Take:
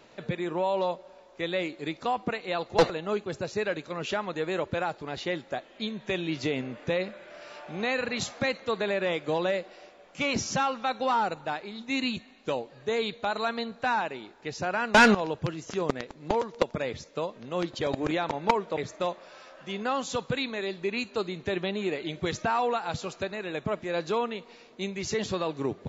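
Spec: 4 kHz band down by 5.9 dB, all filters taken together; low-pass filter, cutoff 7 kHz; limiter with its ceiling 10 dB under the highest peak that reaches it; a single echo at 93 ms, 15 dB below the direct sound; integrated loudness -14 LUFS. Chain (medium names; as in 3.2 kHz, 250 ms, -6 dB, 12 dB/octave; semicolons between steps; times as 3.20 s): low-pass 7 kHz; peaking EQ 4 kHz -7 dB; peak limiter -22 dBFS; delay 93 ms -15 dB; trim +19.5 dB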